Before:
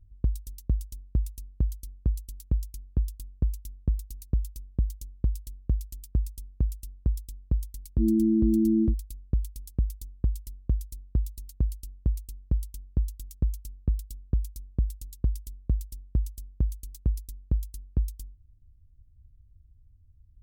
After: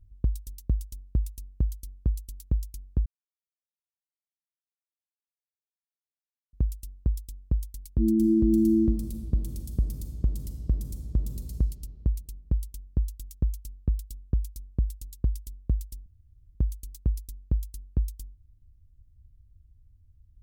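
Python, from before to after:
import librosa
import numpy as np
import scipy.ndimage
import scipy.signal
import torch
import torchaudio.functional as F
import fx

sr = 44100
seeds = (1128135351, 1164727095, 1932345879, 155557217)

y = fx.reverb_throw(x, sr, start_s=8.15, length_s=3.44, rt60_s=2.5, drr_db=4.0)
y = fx.edit(y, sr, fx.silence(start_s=3.06, length_s=3.47),
    fx.room_tone_fill(start_s=16.06, length_s=0.49), tone=tone)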